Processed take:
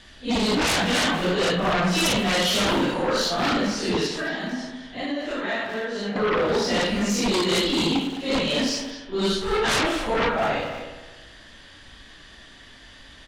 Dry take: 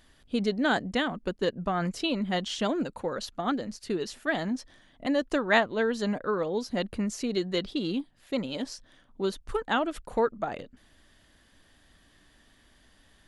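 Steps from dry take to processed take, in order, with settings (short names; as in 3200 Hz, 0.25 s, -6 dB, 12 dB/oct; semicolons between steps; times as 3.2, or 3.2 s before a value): phase scrambler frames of 0.2 s; LPF 4700 Hz 12 dB/oct; high shelf 2600 Hz +10.5 dB; 4.06–6.16 compressor 4:1, threshold -40 dBFS, peak gain reduction 20 dB; sine folder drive 13 dB, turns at -13 dBFS; speakerphone echo 0.21 s, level -6 dB; spring tank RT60 1.4 s, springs 55 ms, chirp 20 ms, DRR 8.5 dB; gain -6 dB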